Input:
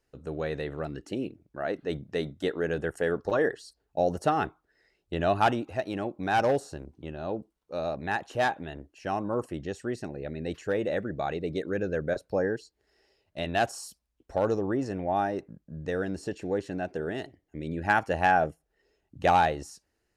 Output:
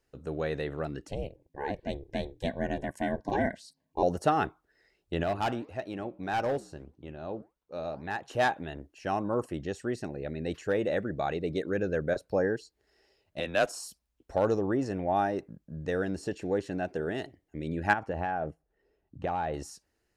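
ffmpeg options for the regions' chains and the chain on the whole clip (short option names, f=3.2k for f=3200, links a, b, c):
-filter_complex "[0:a]asettb=1/sr,asplit=3[a][b][c];[a]atrim=end=1.084[d];[b]atrim=start=1.08:end=4.03,asetpts=PTS-STARTPTS,afade=t=in:d=0.004:c=qsin,afade=t=out:st=2.946:d=0.004:c=qsin,aeval=exprs='val(0)*sin(2*PI*210*n/s)':c=same,asuperstop=centerf=1300:order=12:qfactor=3.8[e];[c]atrim=start=4.026[f];[d][e]acrossfade=d=0.004:c1=hsin:c2=qsin[g];[g][f]acrossfade=d=0.004:c1=qsin:c2=hsin,asettb=1/sr,asplit=3[h][i][j];[h]atrim=end=5.234[k];[i]atrim=start=5.23:end=8.28,asetpts=PTS-STARTPTS,afade=t=in:d=0.004:c=qsin,afade=t=out:st=3.046:d=0.004:c=qsin,highshelf=f=4.2k:g=-4,flanger=delay=2.3:depth=6:regen=-88:speed=1.7:shape=sinusoidal,asoftclip=type=hard:threshold=-24.5dB[l];[j]atrim=start=8.276[m];[k][l]acrossfade=d=0.004:c1=hsin:c2=qsin[n];[n][m]acrossfade=d=0.004:c1=qsin:c2=hsin,asettb=1/sr,asplit=3[o][p][q];[o]atrim=end=13.404[r];[p]atrim=start=13.4:end=13.8,asetpts=PTS-STARTPTS,afade=t=in:d=0.004:c=qsin,afade=t=out:st=0.396:d=0.004:c=qsin,highpass=300,afreqshift=-85[s];[q]atrim=start=13.796[t];[r][s]acrossfade=d=0.004:c1=hsin:c2=qsin[u];[u][t]acrossfade=d=0.004:c1=qsin:c2=hsin,asettb=1/sr,asplit=3[v][w][x];[v]atrim=end=17.934[y];[w]atrim=start=17.93:end=19.54,asetpts=PTS-STARTPTS,afade=t=in:d=0.004:c=qsin,afade=t=out:st=1.606:d=0.004:c=qsin,lowpass=f=1.2k:p=1,acompressor=threshold=-27dB:ratio=10:attack=3.2:release=140:knee=1:detection=peak[z];[x]atrim=start=19.536[aa];[y][z]acrossfade=d=0.004:c1=hsin:c2=qsin[ab];[ab][aa]acrossfade=d=0.004:c1=qsin:c2=hsin"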